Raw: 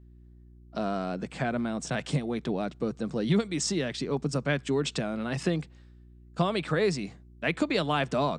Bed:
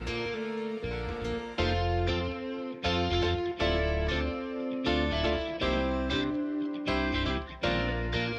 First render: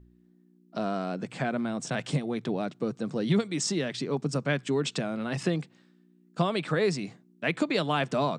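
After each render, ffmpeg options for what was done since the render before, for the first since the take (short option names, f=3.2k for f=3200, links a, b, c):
-af "bandreject=f=60:t=h:w=4,bandreject=f=120:t=h:w=4"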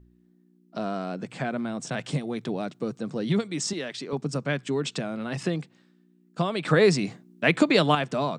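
-filter_complex "[0:a]asettb=1/sr,asplit=3[a][b][c];[a]atrim=end=2.164[d];[b]atrim=start=2.16:end=2.99,asetpts=PTS-STARTPTS,afade=t=in:d=0.004:c=qsin,afade=t=out:st=0.826:d=0.004:c=qsin,highshelf=f=5.9k:g=5.5[e];[c]atrim=start=2.986[f];[d][e]acrossfade=d=0.004:c1=hsin:c2=qsin[g];[g][f]acrossfade=d=0.004:c1=qsin:c2=hsin,asettb=1/sr,asplit=3[h][i][j];[h]atrim=end=3.734[k];[i]atrim=start=3.73:end=4.13,asetpts=PTS-STARTPTS,afade=t=in:d=0.004:c=qsin,afade=t=out:st=0.396:d=0.004:c=qsin,highpass=f=410:p=1[l];[j]atrim=start=4.126[m];[k][l]acrossfade=d=0.004:c1=hsin:c2=qsin[n];[n][m]acrossfade=d=0.004:c1=qsin:c2=hsin,asplit=3[o][p][q];[o]atrim=end=6.652[r];[p]atrim=start=6.648:end=7.952,asetpts=PTS-STARTPTS,volume=7dB[s];[q]atrim=start=7.948[t];[r][s]acrossfade=d=0.004:c1=hsin:c2=hsin[u];[u][t]acrossfade=d=0.004:c1=hsin:c2=hsin"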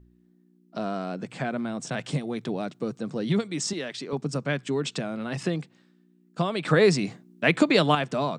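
-af anull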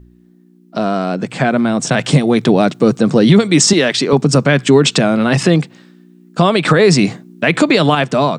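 -af "dynaudnorm=f=440:g=9:m=7.5dB,alimiter=level_in=13dB:limit=-1dB:release=50:level=0:latency=1"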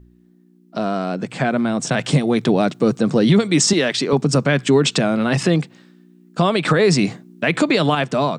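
-af "volume=-5dB"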